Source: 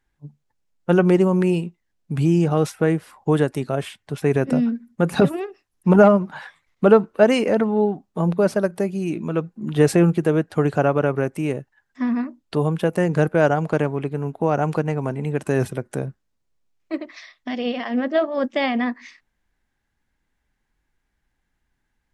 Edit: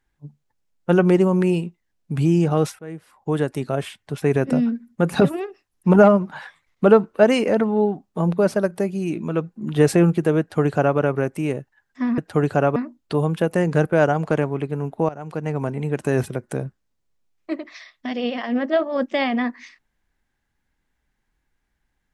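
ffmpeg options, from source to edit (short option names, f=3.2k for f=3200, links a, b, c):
-filter_complex "[0:a]asplit=5[a][b][c][d][e];[a]atrim=end=2.79,asetpts=PTS-STARTPTS,afade=t=out:st=2.786:d=0.004:c=hsin:silence=0.0668344[f];[b]atrim=start=2.79:end=12.182,asetpts=PTS-STARTPTS,afade=t=in:d=0.89:silence=0.0668344[g];[c]atrim=start=10.398:end=10.982[h];[d]atrim=start=12.178:end=14.51,asetpts=PTS-STARTPTS,afade=t=out:st=2.328:d=0.004:c=hsin:silence=0.158489[i];[e]atrim=start=14.51,asetpts=PTS-STARTPTS,afade=t=in:d=0.45:c=qua:silence=0.158489[j];[f][g]concat=n=2:v=0:a=1[k];[k][h]acrossfade=d=0.004:c1=hsin:c2=hsin[l];[i][j]concat=n=2:v=0:a=1[m];[l][m]acrossfade=d=0.004:c1=hsin:c2=hsin"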